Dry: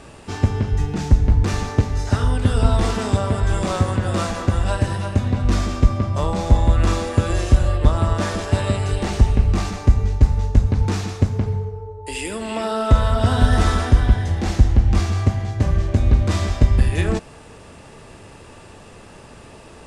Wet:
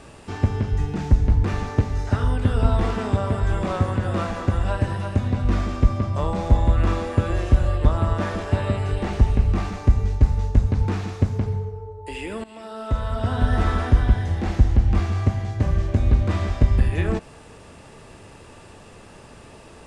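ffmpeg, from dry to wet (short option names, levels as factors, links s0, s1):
-filter_complex "[0:a]asplit=2[s0][s1];[s0]atrim=end=12.44,asetpts=PTS-STARTPTS,afade=t=out:st=12.436:d=0.004:c=hsin:silence=0.141254[s2];[s1]atrim=start=12.44,asetpts=PTS-STARTPTS,afade=t=in:d=1.39:silence=0.141254[s3];[s2][s3]concat=n=2:v=0:a=1,acrossover=split=3100[s4][s5];[s5]acompressor=threshold=0.00501:ratio=4:attack=1:release=60[s6];[s4][s6]amix=inputs=2:normalize=0,volume=0.75"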